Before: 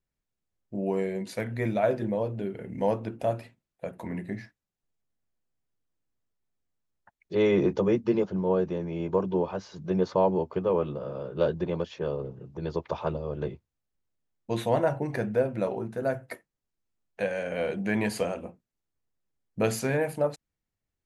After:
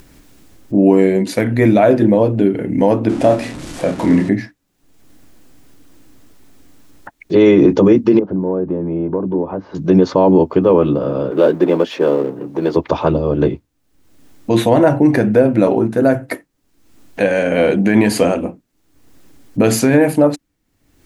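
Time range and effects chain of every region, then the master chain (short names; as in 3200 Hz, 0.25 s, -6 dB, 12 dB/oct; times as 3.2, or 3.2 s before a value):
3.09–4.29 zero-crossing step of -40.5 dBFS + LPF 10000 Hz 24 dB/oct + doubler 30 ms -7 dB
8.19–9.75 LPF 1100 Hz + compressor 2.5:1, threshold -37 dBFS + mismatched tape noise reduction encoder only
11.31–12.77 G.711 law mismatch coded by mu + HPF 280 Hz + high shelf 4200 Hz -8.5 dB
whole clip: upward compressor, threshold -41 dBFS; bell 290 Hz +12.5 dB 0.42 oct; maximiser +16 dB; gain -1 dB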